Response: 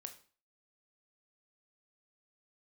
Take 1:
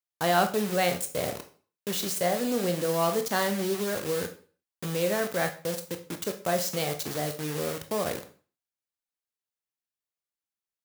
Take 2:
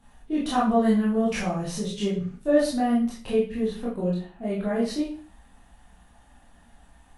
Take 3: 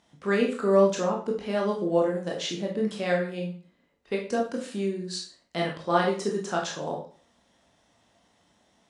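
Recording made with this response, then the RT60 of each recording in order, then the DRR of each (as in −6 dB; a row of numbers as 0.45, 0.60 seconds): 1; 0.40, 0.40, 0.40 seconds; 6.5, −7.5, −1.5 decibels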